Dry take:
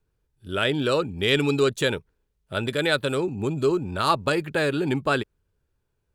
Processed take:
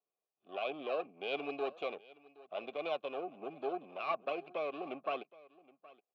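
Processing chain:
lower of the sound and its delayed copy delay 0.3 ms
high-pass filter 190 Hz 24 dB per octave
dynamic equaliser 890 Hz, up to −4 dB, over −37 dBFS, Q 1.5
formant filter a
high-frequency loss of the air 200 metres
single-tap delay 770 ms −21 dB
level +2 dB

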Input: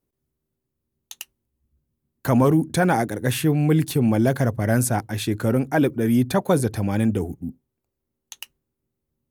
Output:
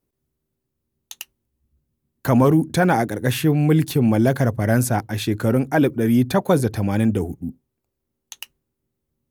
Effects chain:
dynamic equaliser 9,000 Hz, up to −5 dB, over −45 dBFS, Q 1.7
level +2 dB

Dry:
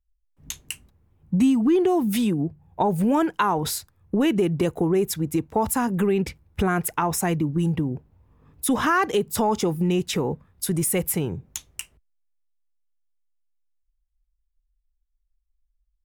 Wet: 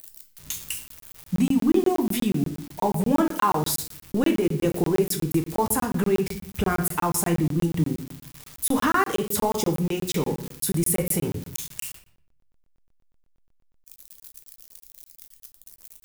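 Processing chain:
spike at every zero crossing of −26 dBFS
rectangular room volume 91 cubic metres, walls mixed, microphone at 0.5 metres
regular buffer underruns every 0.12 s, samples 1,024, zero, from 0:00.88
level −2 dB

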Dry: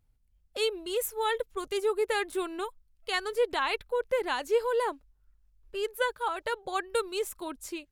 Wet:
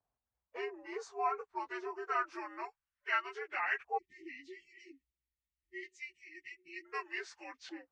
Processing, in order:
partials spread apart or drawn together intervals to 85%
time-frequency box erased 0:03.98–0:06.85, 370–1,800 Hz
downward compressor, threshold −29 dBFS, peak gain reduction 7 dB
auto-filter band-pass saw up 0.26 Hz 790–1,900 Hz
level +6 dB

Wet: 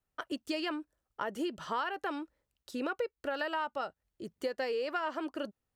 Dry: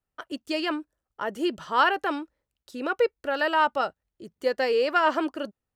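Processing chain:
downward compressor 6 to 1, threshold −32 dBFS, peak gain reduction 15.5 dB

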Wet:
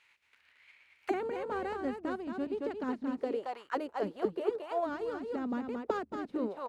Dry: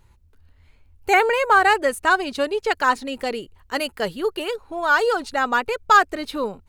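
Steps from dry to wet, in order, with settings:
compressing power law on the bin magnitudes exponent 0.63
single-tap delay 224 ms −5.5 dB
envelope filter 220–2,400 Hz, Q 3.2, down, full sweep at −18 dBFS

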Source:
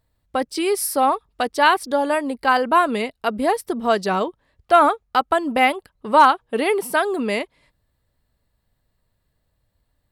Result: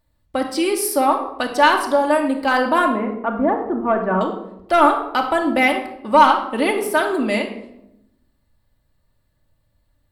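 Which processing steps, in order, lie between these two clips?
0:02.88–0:04.21: low-pass filter 1,600 Hz 24 dB per octave
soft clipping −5.5 dBFS, distortion −21 dB
rectangular room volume 2,400 cubic metres, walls furnished, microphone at 2.5 metres

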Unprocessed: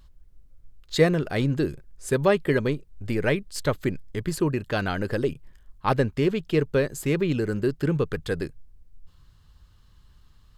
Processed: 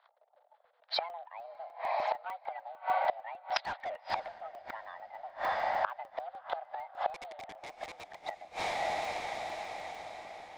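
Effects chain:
spectral magnitudes quantised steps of 30 dB
parametric band 2,300 Hz −10 dB 0.92 octaves
leveller curve on the samples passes 2
in parallel at +1 dB: downward compressor 5 to 1, threshold −29 dBFS, peak gain reduction 15.5 dB
on the sum: single-sideband voice off tune +340 Hz 300–3,500 Hz
0:03.56–0:04.28: mid-hump overdrive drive 29 dB, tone 3,000 Hz, clips at −4 dBFS
0:07.14–0:08.15: wrap-around overflow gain 13.5 dB
high-frequency loss of the air 85 metres
on a send: feedback delay with all-pass diffusion 586 ms, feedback 56%, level −12 dB
on the sum: gate with flip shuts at −17 dBFS, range −25 dB
regular buffer underruns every 0.15 s, samples 64, zero, from 0:00.35
one half of a high-frequency compander decoder only

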